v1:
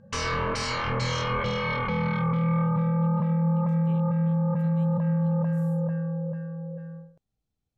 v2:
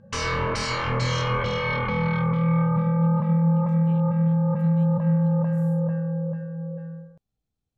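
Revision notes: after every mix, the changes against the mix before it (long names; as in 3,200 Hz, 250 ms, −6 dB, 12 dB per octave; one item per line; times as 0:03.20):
background: send +11.0 dB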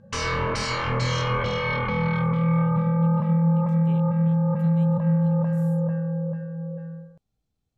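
speech +4.5 dB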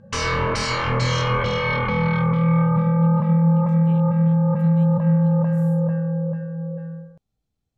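background +3.5 dB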